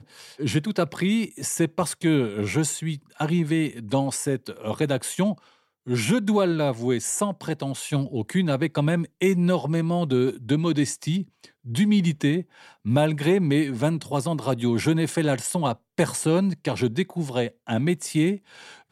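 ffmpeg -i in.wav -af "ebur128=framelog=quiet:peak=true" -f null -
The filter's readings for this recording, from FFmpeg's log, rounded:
Integrated loudness:
  I:         -24.4 LUFS
  Threshold: -34.6 LUFS
Loudness range:
  LRA:         1.8 LU
  Threshold: -44.5 LUFS
  LRA low:   -25.4 LUFS
  LRA high:  -23.6 LUFS
True peak:
  Peak:       -8.3 dBFS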